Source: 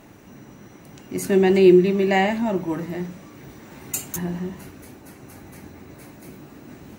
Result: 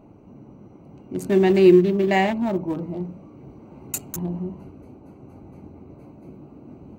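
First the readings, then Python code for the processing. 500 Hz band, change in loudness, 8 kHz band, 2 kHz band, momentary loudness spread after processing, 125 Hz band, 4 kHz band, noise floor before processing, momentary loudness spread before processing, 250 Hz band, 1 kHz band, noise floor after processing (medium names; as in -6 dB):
-0.5 dB, 0.0 dB, -3.5 dB, -1.5 dB, 18 LU, 0.0 dB, -2.0 dB, -47 dBFS, 19 LU, 0.0 dB, -0.5 dB, -48 dBFS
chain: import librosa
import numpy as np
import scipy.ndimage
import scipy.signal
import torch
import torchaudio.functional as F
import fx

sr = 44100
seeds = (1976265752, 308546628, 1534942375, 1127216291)

y = fx.wiener(x, sr, points=25)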